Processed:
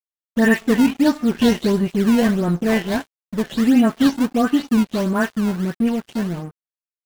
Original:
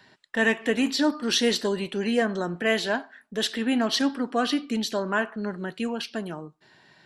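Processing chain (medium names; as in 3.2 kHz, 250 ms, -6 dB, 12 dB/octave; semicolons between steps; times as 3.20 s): delay that grows with frequency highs late, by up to 212 ms; tone controls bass +14 dB, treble -10 dB; in parallel at -3.5 dB: decimation with a swept rate 21×, swing 160% 1.5 Hz; on the sum: crossover distortion -35 dBFS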